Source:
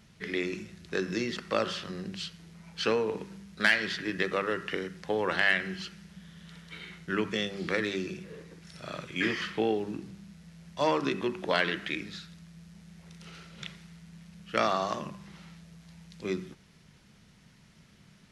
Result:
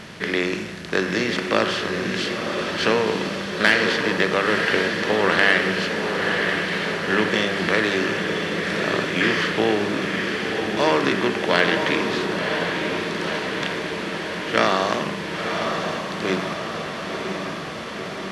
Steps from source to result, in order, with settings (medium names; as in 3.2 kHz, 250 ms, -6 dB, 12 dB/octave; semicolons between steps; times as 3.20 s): spectral levelling over time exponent 0.6; echo that smears into a reverb 1002 ms, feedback 70%, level -4.5 dB; trim +4.5 dB